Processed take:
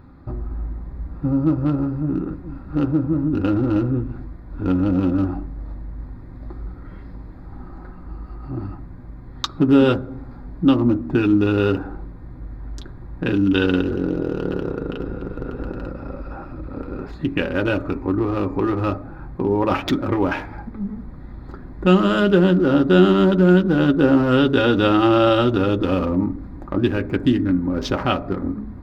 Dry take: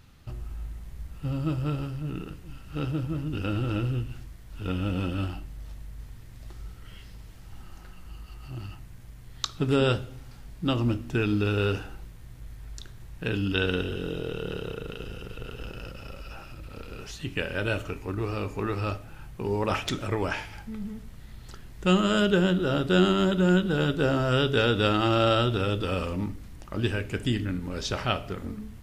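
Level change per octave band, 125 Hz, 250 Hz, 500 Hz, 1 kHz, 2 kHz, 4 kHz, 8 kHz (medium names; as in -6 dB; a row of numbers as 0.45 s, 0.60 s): +5.0 dB, +11.0 dB, +8.0 dB, +6.5 dB, +4.0 dB, +1.5 dB, no reading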